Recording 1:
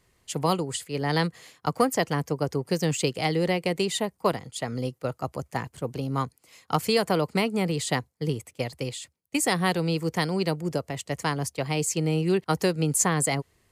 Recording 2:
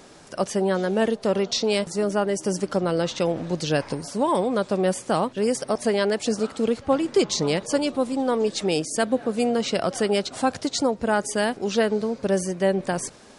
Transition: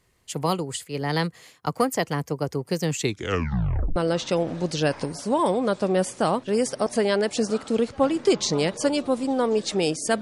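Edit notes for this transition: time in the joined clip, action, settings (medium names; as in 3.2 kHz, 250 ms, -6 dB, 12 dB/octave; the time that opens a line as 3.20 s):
recording 1
2.93 s: tape stop 1.03 s
3.96 s: go over to recording 2 from 2.85 s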